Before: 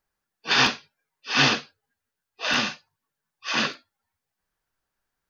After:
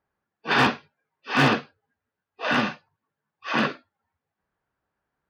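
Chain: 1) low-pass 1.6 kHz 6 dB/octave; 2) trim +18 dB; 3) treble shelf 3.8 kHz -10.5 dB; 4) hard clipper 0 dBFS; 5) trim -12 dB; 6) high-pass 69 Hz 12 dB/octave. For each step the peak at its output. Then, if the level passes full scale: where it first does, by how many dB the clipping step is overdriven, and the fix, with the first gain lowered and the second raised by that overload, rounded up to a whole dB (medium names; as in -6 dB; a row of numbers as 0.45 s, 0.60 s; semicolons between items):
-8.5 dBFS, +9.5 dBFS, +8.5 dBFS, 0.0 dBFS, -12.0 dBFS, -8.5 dBFS; step 2, 8.5 dB; step 2 +9 dB, step 5 -3 dB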